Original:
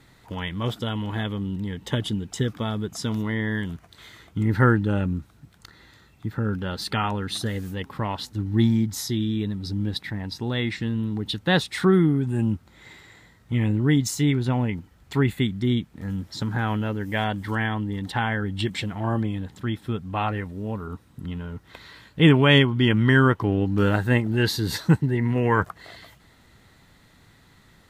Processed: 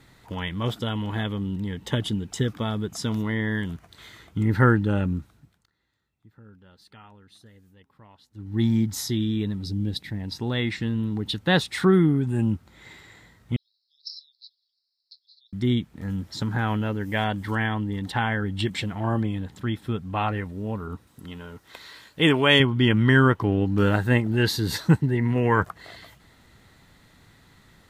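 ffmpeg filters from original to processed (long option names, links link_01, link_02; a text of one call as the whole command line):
ffmpeg -i in.wav -filter_complex "[0:a]asettb=1/sr,asplit=3[link_01][link_02][link_03];[link_01]atrim=end=9.644[link_04];[link_02]atrim=start=9.64:end=10.28,asetpts=PTS-STARTPTS,afade=type=in:duration=0.004:curve=qsin,afade=type=out:start_time=0.636:duration=0.004:curve=qsin,equalizer=frequency=1200:width=0.82:gain=-10[link_05];[link_03]atrim=start=10.276[link_06];[link_04][link_05]acrossfade=duration=0.004:curve1=hsin:curve2=qsin[link_07];[link_07][link_06]acrossfade=duration=0.004:curve1=qsin:curve2=hsin,asettb=1/sr,asplit=3[link_08][link_09][link_10];[link_08]atrim=end=13.564[link_11];[link_09]atrim=start=13.56:end=15.53,asetpts=PTS-STARTPTS,afade=type=in:duration=0.004:curve=qsin,afade=type=out:start_time=1.966:duration=0.004:curve=qsin,asuperpass=centerf=4600:order=12:qfactor=3.1[link_12];[link_10]atrim=start=15.526[link_13];[link_11][link_12]acrossfade=duration=0.004:curve1=hsin:curve2=qsin[link_14];[link_14][link_13]acrossfade=duration=0.004:curve1=qsin:curve2=hsin,asettb=1/sr,asplit=3[link_15][link_16][link_17];[link_15]atrim=end=21.074[link_18];[link_16]atrim=start=21.07:end=22.6,asetpts=PTS-STARTPTS,afade=type=in:duration=0.004:curve=qsin,afade=type=out:start_time=1.526:duration=0.004:curve=qsin,bass=frequency=250:gain=-10,treble=frequency=4000:gain=6[link_19];[link_17]atrim=start=22.596[link_20];[link_18][link_19]acrossfade=duration=0.004:curve1=hsin:curve2=qsin[link_21];[link_21][link_20]acrossfade=duration=0.004:curve1=qsin:curve2=hsin,asplit=3[link_22][link_23][link_24];[link_22]atrim=end=5.66,asetpts=PTS-STARTPTS,afade=type=out:start_time=5.18:duration=0.48:silence=0.0630957[link_25];[link_23]atrim=start=5.66:end=8.3,asetpts=PTS-STARTPTS,volume=-24dB[link_26];[link_24]atrim=start=8.3,asetpts=PTS-STARTPTS,afade=type=in:duration=0.48:silence=0.0630957[link_27];[link_25][link_26][link_27]concat=n=3:v=0:a=1" out.wav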